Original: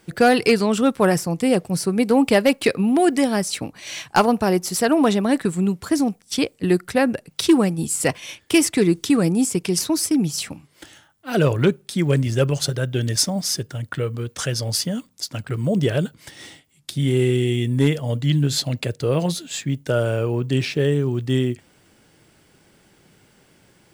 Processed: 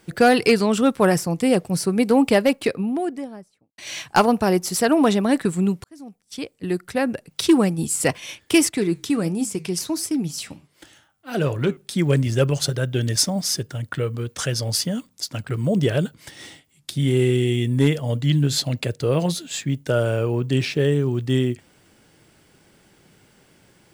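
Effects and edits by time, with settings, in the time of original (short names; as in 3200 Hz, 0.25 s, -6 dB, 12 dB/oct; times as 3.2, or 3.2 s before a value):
2.08–3.78 studio fade out
5.84–7.62 fade in linear
8.69–11.77 flange 1.4 Hz, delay 6 ms, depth 5.4 ms, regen -83%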